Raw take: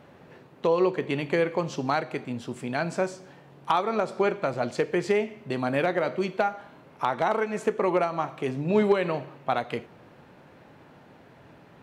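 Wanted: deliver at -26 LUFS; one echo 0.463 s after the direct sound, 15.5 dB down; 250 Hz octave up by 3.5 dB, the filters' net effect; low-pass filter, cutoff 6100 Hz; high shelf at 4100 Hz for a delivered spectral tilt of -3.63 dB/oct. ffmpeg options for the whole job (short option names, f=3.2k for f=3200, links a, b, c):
-af "lowpass=6.1k,equalizer=f=250:t=o:g=5,highshelf=f=4.1k:g=-6.5,aecho=1:1:463:0.168"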